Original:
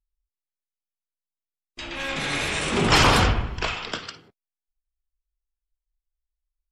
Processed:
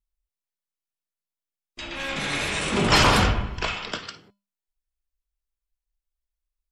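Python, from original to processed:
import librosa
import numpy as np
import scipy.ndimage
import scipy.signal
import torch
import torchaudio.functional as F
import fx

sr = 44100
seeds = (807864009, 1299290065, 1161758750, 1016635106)

y = fx.comb_fb(x, sr, f0_hz=200.0, decay_s=0.29, harmonics='odd', damping=0.0, mix_pct=60)
y = y * 10.0 ** (6.5 / 20.0)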